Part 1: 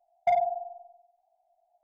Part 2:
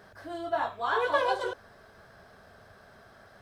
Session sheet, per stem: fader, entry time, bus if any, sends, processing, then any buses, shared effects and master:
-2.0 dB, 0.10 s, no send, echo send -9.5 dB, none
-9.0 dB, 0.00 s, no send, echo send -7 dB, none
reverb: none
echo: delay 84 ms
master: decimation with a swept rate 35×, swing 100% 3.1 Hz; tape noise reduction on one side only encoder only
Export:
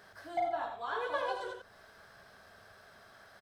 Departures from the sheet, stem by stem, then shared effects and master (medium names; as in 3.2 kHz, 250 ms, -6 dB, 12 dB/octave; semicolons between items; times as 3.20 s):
stem 1 -2.0 dB -> -8.5 dB; master: missing decimation with a swept rate 35×, swing 100% 3.1 Hz